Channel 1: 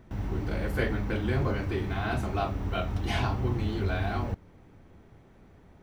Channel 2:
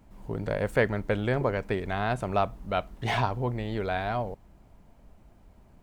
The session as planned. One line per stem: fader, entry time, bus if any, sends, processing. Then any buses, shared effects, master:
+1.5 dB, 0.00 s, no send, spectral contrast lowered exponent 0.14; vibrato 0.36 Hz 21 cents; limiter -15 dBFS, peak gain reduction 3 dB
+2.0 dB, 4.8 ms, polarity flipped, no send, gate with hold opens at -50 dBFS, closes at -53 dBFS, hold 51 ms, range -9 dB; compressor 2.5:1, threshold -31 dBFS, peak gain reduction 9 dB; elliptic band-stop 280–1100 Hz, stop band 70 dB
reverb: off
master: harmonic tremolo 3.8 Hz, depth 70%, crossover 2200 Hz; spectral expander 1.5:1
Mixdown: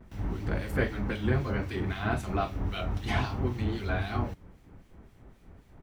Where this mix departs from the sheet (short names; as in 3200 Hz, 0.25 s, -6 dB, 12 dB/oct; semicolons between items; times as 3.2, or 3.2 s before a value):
stem 1: missing spectral contrast lowered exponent 0.14; master: missing spectral expander 1.5:1